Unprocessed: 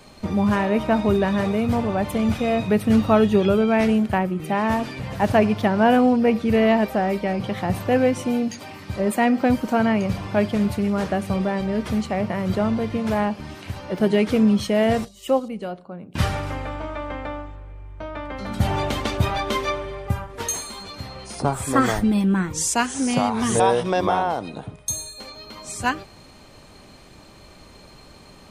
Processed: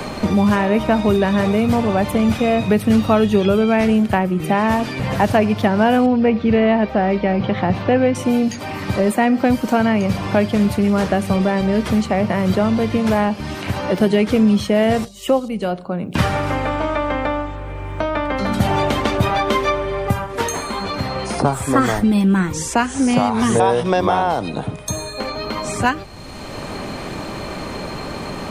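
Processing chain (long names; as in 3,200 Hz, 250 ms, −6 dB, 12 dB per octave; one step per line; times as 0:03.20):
0:06.06–0:08.15: high-frequency loss of the air 220 metres
multiband upward and downward compressor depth 70%
level +4 dB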